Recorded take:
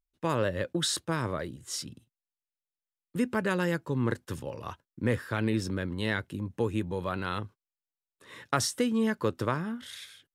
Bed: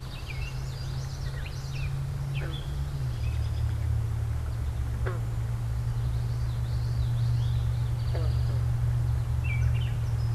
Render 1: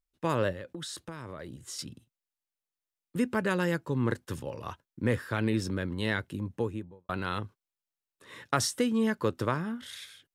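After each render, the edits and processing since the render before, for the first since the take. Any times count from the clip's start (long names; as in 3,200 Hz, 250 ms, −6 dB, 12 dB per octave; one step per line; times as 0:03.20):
0:00.52–0:01.79: downward compressor 5 to 1, threshold −37 dBFS
0:06.44–0:07.09: fade out and dull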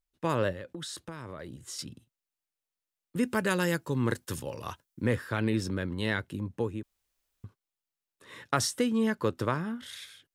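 0:03.23–0:05.06: high-shelf EQ 4,100 Hz +10.5 dB
0:06.83–0:07.44: fill with room tone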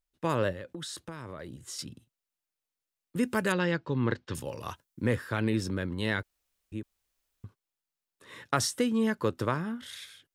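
0:03.52–0:04.35: low-pass filter 4,400 Hz 24 dB per octave
0:06.23–0:06.72: fill with room tone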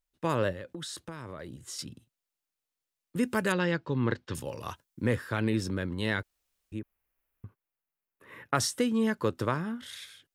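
0:06.79–0:08.55: flat-topped bell 5,500 Hz −14 dB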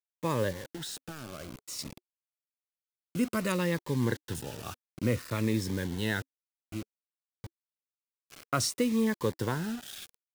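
bit reduction 7 bits
phaser whose notches keep moving one way falling 0.57 Hz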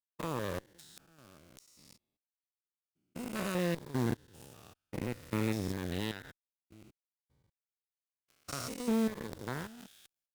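spectrum averaged block by block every 200 ms
harmonic generator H 3 −20 dB, 7 −22 dB, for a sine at −19 dBFS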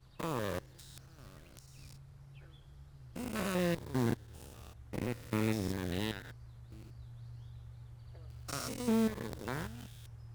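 mix in bed −23 dB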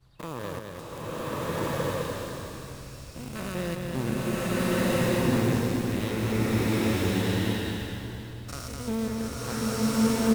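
on a send: single-tap delay 209 ms −4 dB
on the sum: slow-attack reverb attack 1,440 ms, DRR −9.5 dB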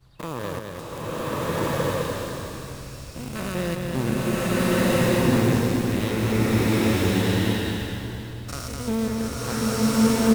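level +4.5 dB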